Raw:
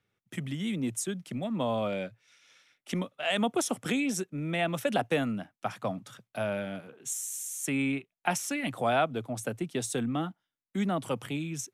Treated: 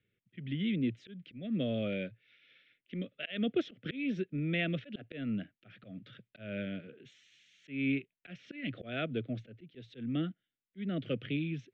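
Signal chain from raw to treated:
Butterworth low-pass 3,500 Hz 36 dB per octave
volume swells 232 ms
Butterworth band-reject 930 Hz, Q 0.77

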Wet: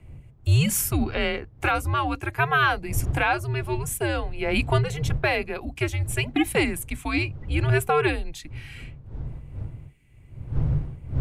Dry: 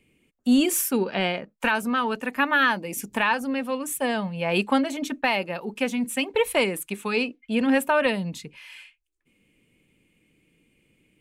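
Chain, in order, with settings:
wind on the microphone 140 Hz −33 dBFS
frequency shifter −150 Hz

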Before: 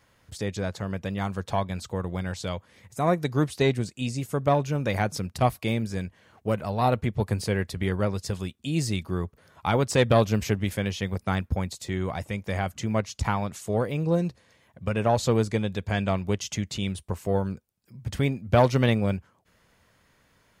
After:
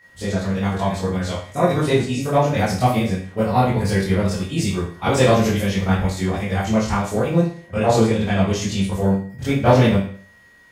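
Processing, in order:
steady tone 1,900 Hz −49 dBFS
four-comb reverb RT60 0.91 s, combs from 32 ms, DRR −9.5 dB
phase-vocoder stretch with locked phases 0.52×
level −1.5 dB

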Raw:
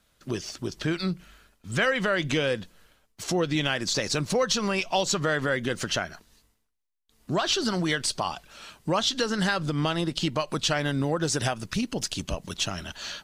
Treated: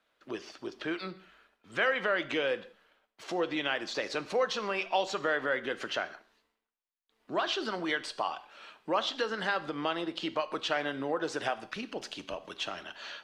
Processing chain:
three-way crossover with the lows and the highs turned down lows −22 dB, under 300 Hz, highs −18 dB, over 3,600 Hz
reverb whose tail is shaped and stops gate 210 ms falling, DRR 12 dB
level −3 dB

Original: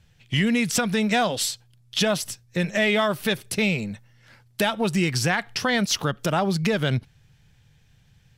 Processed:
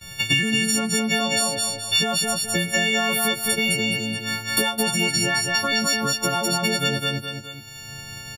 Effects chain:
every partial snapped to a pitch grid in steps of 4 semitones
downward expander −46 dBFS
downward compressor 2 to 1, threshold −31 dBFS, peak gain reduction 12 dB
repeating echo 209 ms, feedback 23%, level −4 dB
multiband upward and downward compressor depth 100%
level +3.5 dB

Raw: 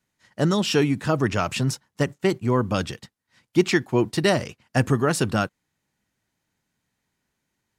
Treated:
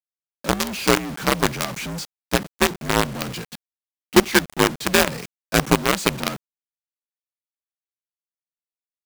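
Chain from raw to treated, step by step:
frequency shifter +62 Hz
speed change −14%
log-companded quantiser 2 bits
level −4 dB

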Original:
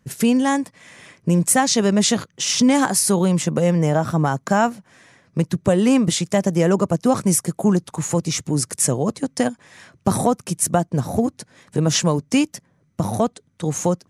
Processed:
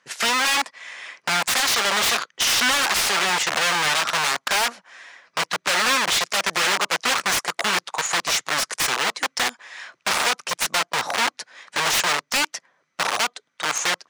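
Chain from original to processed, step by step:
stylus tracing distortion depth 0.069 ms
low-pass filter 5,100 Hz 12 dB per octave
wrap-around overflow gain 19.5 dB
high-pass filter 920 Hz 12 dB per octave
slew-rate limiting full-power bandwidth 290 Hz
level +8.5 dB

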